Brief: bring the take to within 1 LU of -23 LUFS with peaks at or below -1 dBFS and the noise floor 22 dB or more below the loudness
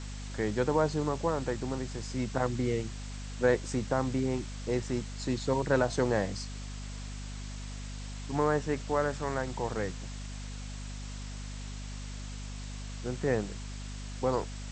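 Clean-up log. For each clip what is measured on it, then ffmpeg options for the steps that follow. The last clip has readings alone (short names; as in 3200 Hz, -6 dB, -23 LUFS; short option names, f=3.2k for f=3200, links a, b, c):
hum 50 Hz; harmonics up to 250 Hz; hum level -37 dBFS; noise floor -40 dBFS; noise floor target -55 dBFS; loudness -33.0 LUFS; peak -13.0 dBFS; loudness target -23.0 LUFS
-> -af "bandreject=f=50:t=h:w=4,bandreject=f=100:t=h:w=4,bandreject=f=150:t=h:w=4,bandreject=f=200:t=h:w=4,bandreject=f=250:t=h:w=4"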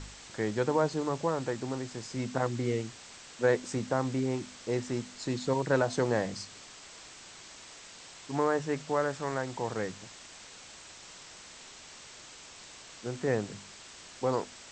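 hum none; noise floor -50 dBFS; noise floor target -54 dBFS
-> -af "afftdn=nr=6:nf=-50"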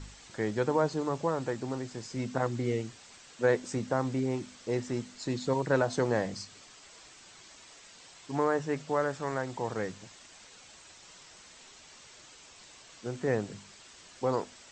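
noise floor -54 dBFS; loudness -32.0 LUFS; peak -13.0 dBFS; loudness target -23.0 LUFS
-> -af "volume=9dB"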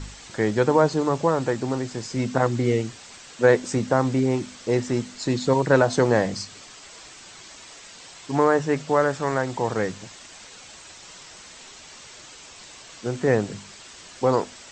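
loudness -23.0 LUFS; peak -4.0 dBFS; noise floor -45 dBFS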